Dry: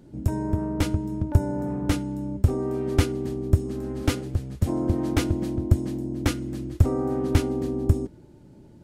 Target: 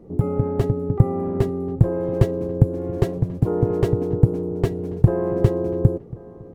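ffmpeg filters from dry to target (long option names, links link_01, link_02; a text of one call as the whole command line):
ffmpeg -i in.wav -filter_complex "[0:a]asetrate=59535,aresample=44100,tiltshelf=frequency=1400:gain=8.5,asplit=2[link_01][link_02];[link_02]adelay=1087,lowpass=frequency=2300:poles=1,volume=-20dB,asplit=2[link_03][link_04];[link_04]adelay=1087,lowpass=frequency=2300:poles=1,volume=0.38,asplit=2[link_05][link_06];[link_06]adelay=1087,lowpass=frequency=2300:poles=1,volume=0.38[link_07];[link_03][link_05][link_07]amix=inputs=3:normalize=0[link_08];[link_01][link_08]amix=inputs=2:normalize=0,volume=-3.5dB" out.wav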